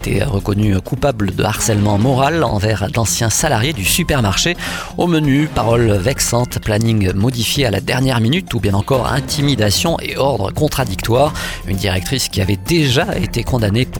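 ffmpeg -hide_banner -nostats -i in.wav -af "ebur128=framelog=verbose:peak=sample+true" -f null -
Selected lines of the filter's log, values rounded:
Integrated loudness:
  I:         -15.5 LUFS
  Threshold: -25.5 LUFS
Loudness range:
  LRA:         1.6 LU
  Threshold: -35.4 LUFS
  LRA low:   -16.3 LUFS
  LRA high:  -14.6 LUFS
Sample peak:
  Peak:       -2.9 dBFS
True peak:
  Peak:       -2.0 dBFS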